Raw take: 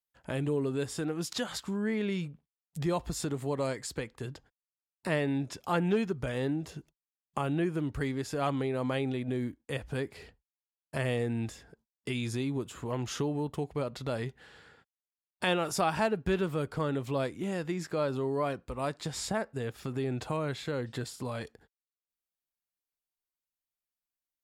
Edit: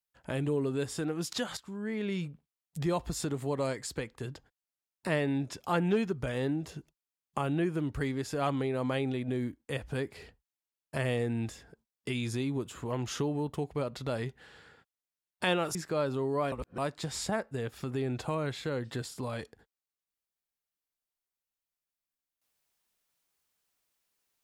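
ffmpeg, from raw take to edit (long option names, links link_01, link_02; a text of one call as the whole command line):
ffmpeg -i in.wav -filter_complex "[0:a]asplit=5[link_01][link_02][link_03][link_04][link_05];[link_01]atrim=end=1.57,asetpts=PTS-STARTPTS,afade=type=out:start_time=1.566:duration=0.004:curve=hsin:silence=0.251189[link_06];[link_02]atrim=start=1.57:end=15.752,asetpts=PTS-STARTPTS,afade=type=in:duration=0.66:silence=0.251189[link_07];[link_03]atrim=start=17.768:end=18.542[link_08];[link_04]atrim=start=18.538:end=18.802,asetpts=PTS-STARTPTS,areverse[link_09];[link_05]atrim=start=18.798[link_10];[link_06][link_07]concat=n=2:v=0:a=1[link_11];[link_11][link_08]acrossfade=duration=0.004:curve1=hsin:curve2=hsin[link_12];[link_12][link_09]acrossfade=duration=0.004:curve1=hsin:curve2=hsin[link_13];[link_13][link_10]acrossfade=duration=0.004:curve1=hsin:curve2=hsin" out.wav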